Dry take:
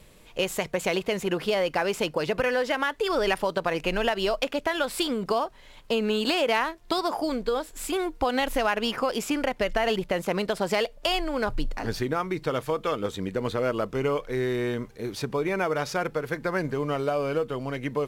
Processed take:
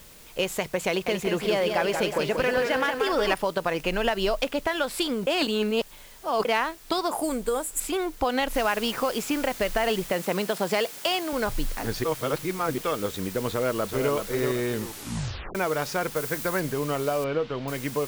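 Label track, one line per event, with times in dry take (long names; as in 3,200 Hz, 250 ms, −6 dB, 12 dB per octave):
0.880000	3.340000	feedback echo with a swinging delay time 183 ms, feedback 51%, depth 79 cents, level −5.5 dB
4.050000	4.670000	low-shelf EQ 140 Hz +6.5 dB
5.270000	6.450000	reverse
7.110000	7.800000	high shelf with overshoot 6,400 Hz +11.5 dB, Q 3
8.550000	8.550000	noise floor change −51 dB −41 dB
10.100000	11.330000	high-pass filter 120 Hz 24 dB per octave
12.040000	12.780000	reverse
13.500000	14.130000	delay throw 380 ms, feedback 35%, level −6 dB
14.720000	14.720000	tape stop 0.83 s
16.160000	16.600000	high-shelf EQ 7,700 Hz +7.5 dB
17.240000	17.680000	low-pass filter 4,000 Hz 24 dB per octave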